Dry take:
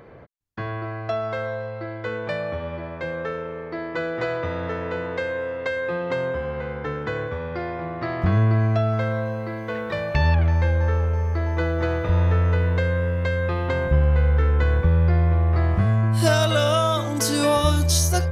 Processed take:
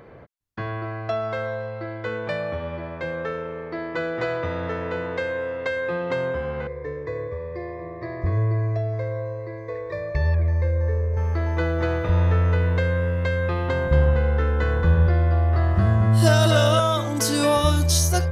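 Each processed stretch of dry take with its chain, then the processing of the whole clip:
6.67–11.17 Butterworth band-stop 1400 Hz, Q 2.2 + air absorption 100 m + fixed phaser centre 810 Hz, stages 6
13.69–16.8 notch 2300 Hz, Q 6.6 + echo 0.227 s -6 dB
whole clip: dry

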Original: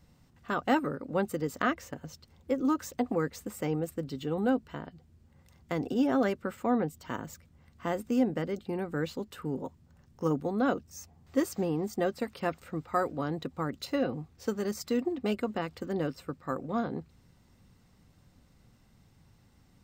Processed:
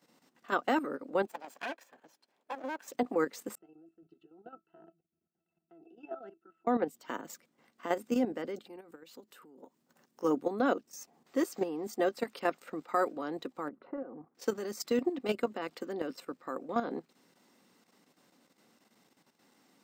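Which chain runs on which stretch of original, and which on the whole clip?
1.26–2.88 minimum comb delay 1.2 ms + tone controls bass -9 dB, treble -6 dB + upward expander, over -43 dBFS
3.55–6.67 dynamic EQ 170 Hz, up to -8 dB, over -45 dBFS, Q 1.4 + level quantiser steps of 15 dB + octave resonator E, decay 0.12 s
8.65–10.23 high shelf 8300 Hz +7.5 dB + compressor 5:1, threshold -48 dBFS
13.68–14.35 LPF 1400 Hz 24 dB/oct + compressor 12:1, threshold -35 dBFS
whole clip: HPF 250 Hz 24 dB/oct; level quantiser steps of 10 dB; gain +3.5 dB

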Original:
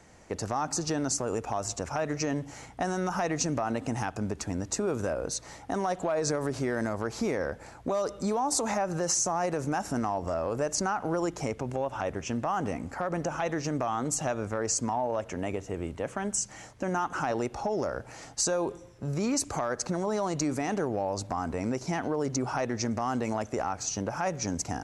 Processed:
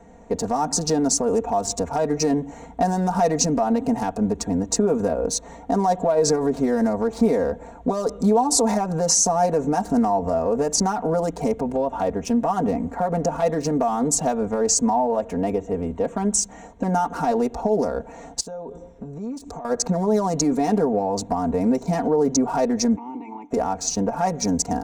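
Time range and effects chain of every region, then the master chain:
18.4–19.65 LPF 11000 Hz + dynamic EQ 2200 Hz, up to -5 dB, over -51 dBFS, Q 1.2 + compressor 12:1, threshold -38 dBFS
22.95–23.5 spectral limiter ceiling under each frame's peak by 18 dB + vowel filter u
whole clip: Wiener smoothing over 9 samples; band shelf 1900 Hz -9 dB; comb 4.3 ms, depth 93%; gain +7 dB

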